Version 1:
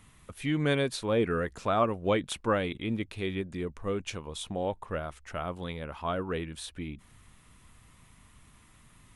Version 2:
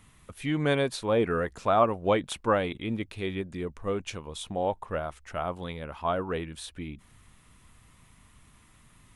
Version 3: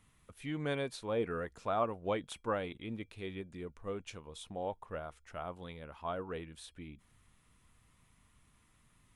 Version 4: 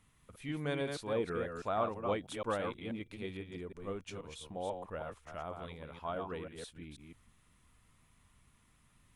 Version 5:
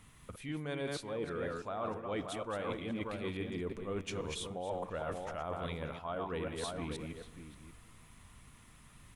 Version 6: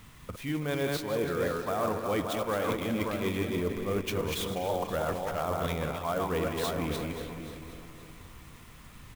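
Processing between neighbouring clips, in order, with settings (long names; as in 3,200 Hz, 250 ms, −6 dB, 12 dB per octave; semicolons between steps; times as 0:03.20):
dynamic equaliser 800 Hz, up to +6 dB, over −41 dBFS, Q 1.2
tuned comb filter 470 Hz, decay 0.15 s, harmonics odd, mix 40%; level −6 dB
delay that plays each chunk backwards 162 ms, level −5 dB; level −1 dB
slap from a distant wall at 100 metres, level −12 dB; dense smooth reverb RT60 2.6 s, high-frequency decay 0.75×, DRR 19.5 dB; reversed playback; downward compressor 16 to 1, threshold −44 dBFS, peak gain reduction 17 dB; reversed playback; level +9.5 dB
feedback delay that plays each chunk backwards 262 ms, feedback 60%, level −11.5 dB; far-end echo of a speakerphone 330 ms, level −11 dB; converter with an unsteady clock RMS 0.023 ms; level +7.5 dB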